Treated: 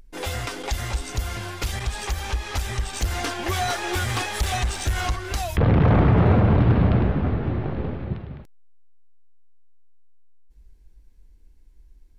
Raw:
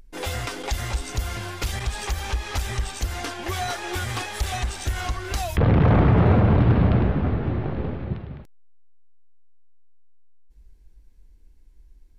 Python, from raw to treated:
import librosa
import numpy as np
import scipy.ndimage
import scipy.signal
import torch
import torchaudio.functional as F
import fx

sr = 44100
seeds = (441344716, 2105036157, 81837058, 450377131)

y = fx.leveller(x, sr, passes=1, at=(2.93, 5.16))